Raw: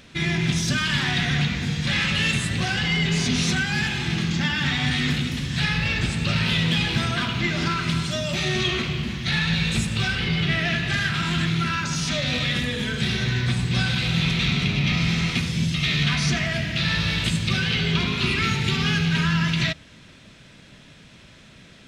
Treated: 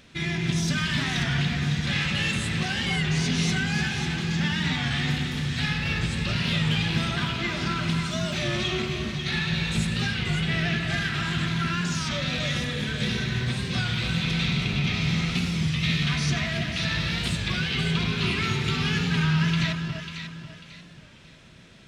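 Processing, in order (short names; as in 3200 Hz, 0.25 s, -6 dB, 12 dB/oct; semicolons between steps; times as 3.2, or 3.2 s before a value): echo with dull and thin repeats by turns 0.272 s, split 1400 Hz, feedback 57%, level -3 dB; record warp 33 1/3 rpm, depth 100 cents; gain -4.5 dB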